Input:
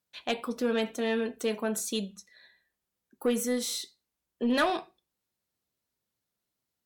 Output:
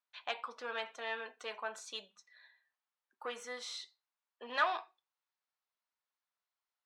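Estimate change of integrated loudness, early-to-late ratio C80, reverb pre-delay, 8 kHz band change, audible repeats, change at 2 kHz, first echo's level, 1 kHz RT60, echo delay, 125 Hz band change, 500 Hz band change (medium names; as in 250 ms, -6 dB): -9.5 dB, no reverb, no reverb, -15.5 dB, no echo, -3.5 dB, no echo, no reverb, no echo, no reading, -14.0 dB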